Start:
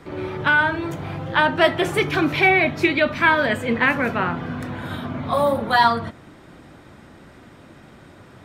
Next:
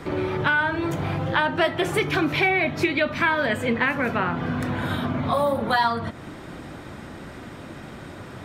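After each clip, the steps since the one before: compression 2.5:1, threshold -31 dBFS, peak gain reduction 13.5 dB; trim +7 dB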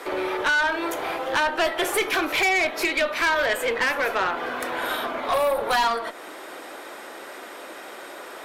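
high-pass 400 Hz 24 dB/octave; peaking EQ 12 kHz +10 dB 0.7 oct; valve stage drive 22 dB, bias 0.35; trim +5 dB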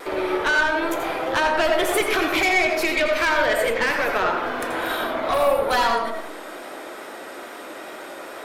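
bass shelf 210 Hz +7 dB; vibrato 2.3 Hz 35 cents; on a send at -3 dB: reverberation RT60 0.60 s, pre-delay 77 ms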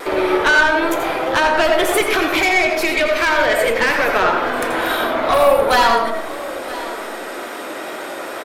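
delay 973 ms -17.5 dB; gain riding within 3 dB 2 s; trim +5 dB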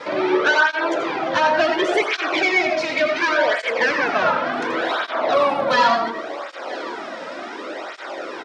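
elliptic band-pass 120–5700 Hz, stop band 50 dB; cancelling through-zero flanger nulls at 0.69 Hz, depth 2.8 ms

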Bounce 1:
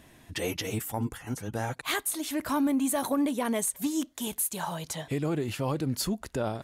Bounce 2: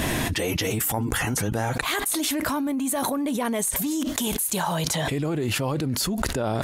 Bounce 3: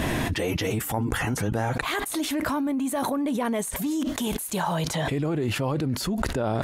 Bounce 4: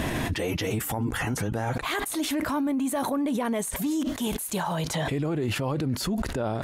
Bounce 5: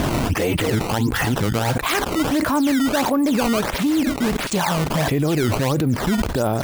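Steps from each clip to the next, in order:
level flattener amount 100%; trim -2 dB
treble shelf 3.8 kHz -8.5 dB
peak limiter -19.5 dBFS, peak gain reduction 10 dB
decimation with a swept rate 15×, swing 160% 1.5 Hz; trim +8 dB

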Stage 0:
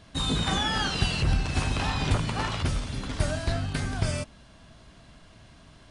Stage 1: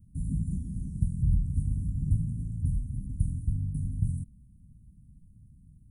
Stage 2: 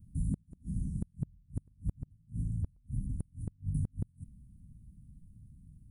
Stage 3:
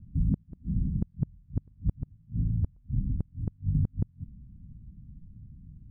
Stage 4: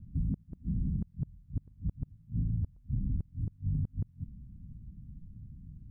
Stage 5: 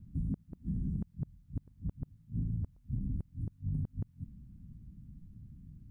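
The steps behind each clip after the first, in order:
inverse Chebyshev band-stop 600–4700 Hz, stop band 60 dB
inverted gate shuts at -22 dBFS, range -36 dB
low-pass 1.9 kHz 12 dB/octave; trim +6.5 dB
peak limiter -24.5 dBFS, peak gain reduction 9.5 dB
bass shelf 220 Hz -8.5 dB; trim +3.5 dB

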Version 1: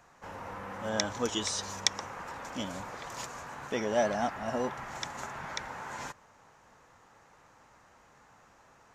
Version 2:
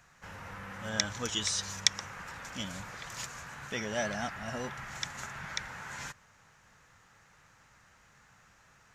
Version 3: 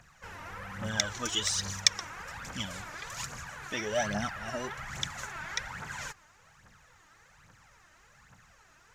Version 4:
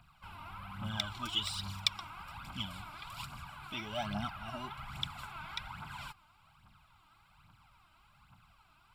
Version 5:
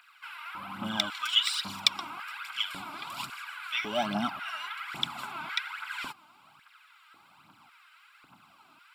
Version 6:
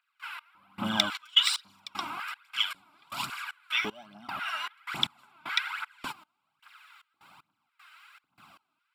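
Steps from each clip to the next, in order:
high-order bell 510 Hz -9.5 dB 2.5 oct; trim +2 dB
phaser 1.2 Hz, delay 3.4 ms, feedback 60%
static phaser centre 1.8 kHz, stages 6; trim -1.5 dB
LFO high-pass square 0.91 Hz 280–1700 Hz; trim +7 dB
trance gate "..xx....xxxx" 154 bpm -24 dB; trim +3.5 dB

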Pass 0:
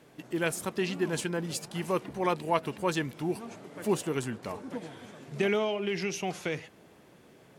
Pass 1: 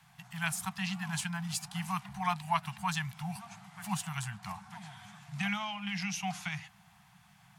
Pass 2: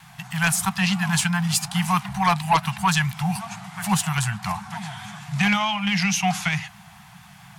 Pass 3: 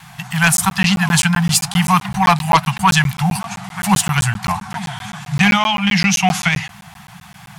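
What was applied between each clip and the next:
Chebyshev band-stop 200–720 Hz, order 5
vibrato 4.6 Hz 47 cents; sine folder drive 7 dB, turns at -15.5 dBFS; trim +3.5 dB
crackling interface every 0.13 s, samples 512, zero, from 0.57 s; trim +7.5 dB

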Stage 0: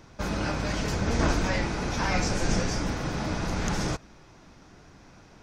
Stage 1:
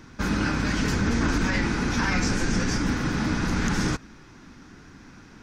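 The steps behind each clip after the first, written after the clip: fifteen-band graphic EQ 250 Hz +7 dB, 630 Hz -9 dB, 1.6 kHz +5 dB; peak limiter -17.5 dBFS, peak gain reduction 7 dB; trim +3 dB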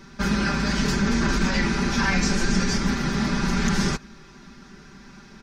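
peaking EQ 4.4 kHz +3.5 dB 0.77 oct; comb 5.1 ms, depth 92%; trim -1 dB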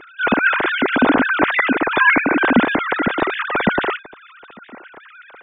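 formants replaced by sine waves; trim +5 dB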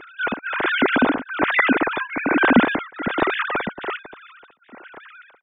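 tremolo of two beating tones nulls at 1.2 Hz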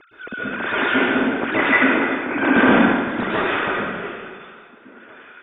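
rotary cabinet horn 1.1 Hz; plate-style reverb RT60 1.7 s, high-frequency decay 0.8×, pre-delay 105 ms, DRR -8.5 dB; trim -6 dB

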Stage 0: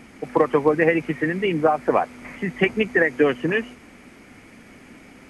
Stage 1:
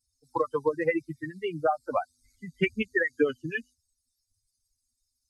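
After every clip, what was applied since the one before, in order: expander on every frequency bin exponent 3; trim -2.5 dB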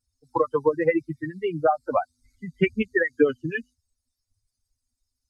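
treble shelf 2.8 kHz -11.5 dB; trim +5.5 dB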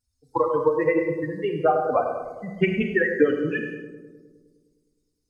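filtered feedback delay 103 ms, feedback 71%, low-pass 1.5 kHz, level -8.5 dB; on a send at -5 dB: reverberation, pre-delay 31 ms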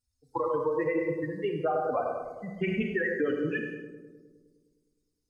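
peak limiter -15 dBFS, peak gain reduction 8.5 dB; trim -4.5 dB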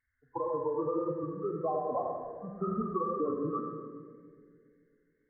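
knee-point frequency compression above 1 kHz 4:1; wow and flutter 43 cents; two-band feedback delay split 510 Hz, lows 273 ms, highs 137 ms, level -12 dB; trim -4 dB

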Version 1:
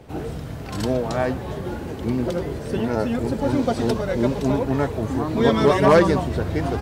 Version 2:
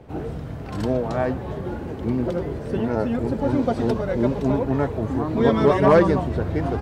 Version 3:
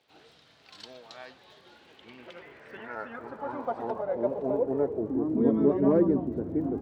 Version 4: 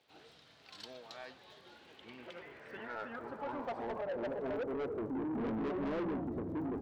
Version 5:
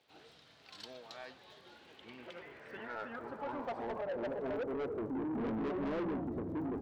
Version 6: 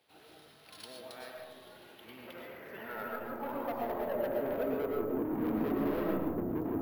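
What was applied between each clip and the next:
treble shelf 3 kHz -11.5 dB
band-pass sweep 4 kHz -> 290 Hz, 1.71–5.36 s; crackle 52 per s -54 dBFS
in parallel at -1 dB: peak limiter -21 dBFS, peak gain reduction 10 dB; on the sum: saturation -26 dBFS, distortion -6 dB; trim -8 dB
no audible change
algorithmic reverb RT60 1 s, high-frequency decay 0.25×, pre-delay 75 ms, DRR 0 dB; careless resampling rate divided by 3×, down none, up hold

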